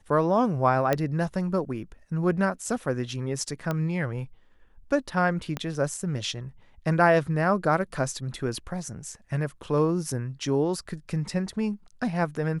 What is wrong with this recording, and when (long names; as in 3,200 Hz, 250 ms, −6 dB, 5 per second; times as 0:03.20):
0:00.93: click −10 dBFS
0:03.71: click −15 dBFS
0:05.57: click −16 dBFS